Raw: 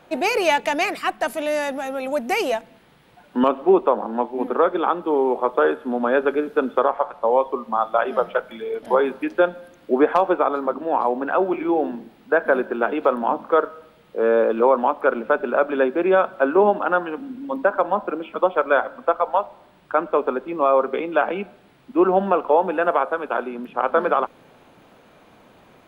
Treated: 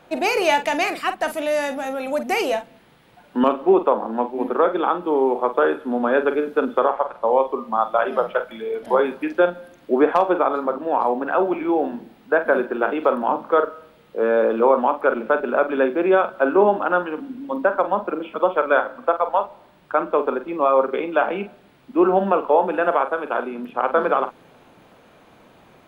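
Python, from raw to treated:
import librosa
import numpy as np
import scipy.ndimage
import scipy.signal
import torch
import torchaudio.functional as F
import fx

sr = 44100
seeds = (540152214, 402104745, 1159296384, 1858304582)

y = fx.doubler(x, sr, ms=45.0, db=-10)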